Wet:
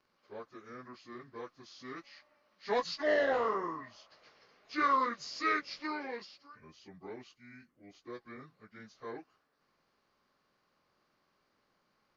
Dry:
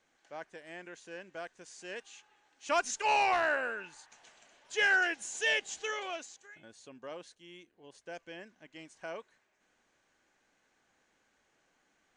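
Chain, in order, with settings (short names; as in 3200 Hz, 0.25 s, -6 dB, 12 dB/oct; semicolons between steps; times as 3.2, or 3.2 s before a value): pitch shift by moving bins -6 st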